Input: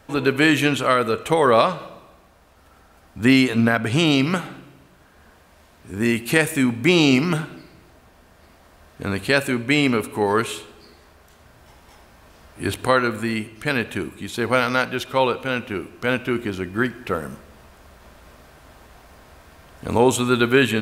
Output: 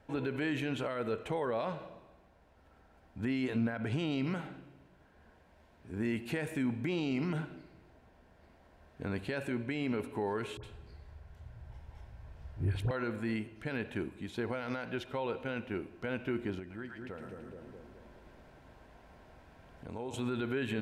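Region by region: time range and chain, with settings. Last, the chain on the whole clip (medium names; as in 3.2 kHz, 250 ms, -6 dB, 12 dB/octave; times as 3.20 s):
10.57–12.91 s: resonant low shelf 160 Hz +12 dB, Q 1.5 + phase dispersion highs, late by 66 ms, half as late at 1.2 kHz
16.59–20.14 s: dynamic bell 5.6 kHz, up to +6 dB, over -44 dBFS, Q 0.75 + two-band feedback delay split 610 Hz, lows 211 ms, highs 111 ms, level -6.5 dB + compression 2.5:1, threshold -35 dBFS
whole clip: peak limiter -15 dBFS; low-pass 1.8 kHz 6 dB/octave; band-stop 1.2 kHz, Q 5.8; trim -9 dB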